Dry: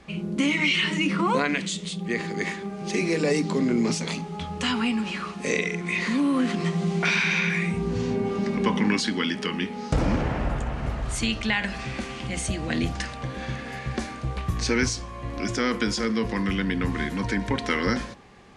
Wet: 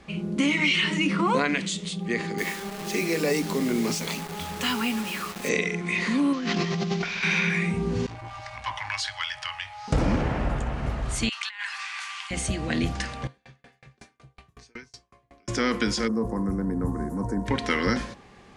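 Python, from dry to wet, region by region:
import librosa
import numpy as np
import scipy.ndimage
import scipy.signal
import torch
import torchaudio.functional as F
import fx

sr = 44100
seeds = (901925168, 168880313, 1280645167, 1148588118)

y = fx.chain(x, sr, fx.low_shelf(hz=250.0, db=-5.5),
    fx.quant_dither(seeds[0], bits=6, dither='none'), at=(2.38, 5.49))
y = fx.chain(y, sr, fx.cvsd(bps=32000),
    fx.high_shelf(hz=2000.0, db=7.0),
    fx.over_compress(threshold_db=-28.0, ratio=-1.0), at=(6.33, 7.23))
y = fx.chain(y, sr, fx.cheby1_bandstop(low_hz=130.0, high_hz=620.0, order=5),
    fx.high_shelf(hz=7100.0, db=-5.0),
    fx.transformer_sat(knee_hz=1400.0), at=(8.06, 9.88))
y = fx.chain(y, sr, fx.steep_highpass(hz=940.0, slope=48),
    fx.over_compress(threshold_db=-31.0, ratio=-0.5), at=(11.29, 12.31))
y = fx.chain(y, sr, fx.low_shelf(hz=170.0, db=-6.5),
    fx.comb_fb(f0_hz=140.0, decay_s=0.21, harmonics='odd', damping=0.0, mix_pct=80),
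    fx.tremolo_decay(direction='decaying', hz=5.4, depth_db=36), at=(13.27, 15.48))
y = fx.cheby1_bandstop(y, sr, low_hz=860.0, high_hz=9200.0, order=2, at=(16.07, 17.45), fade=0.02)
y = fx.dmg_crackle(y, sr, seeds[1], per_s=95.0, level_db=-51.0, at=(16.07, 17.45), fade=0.02)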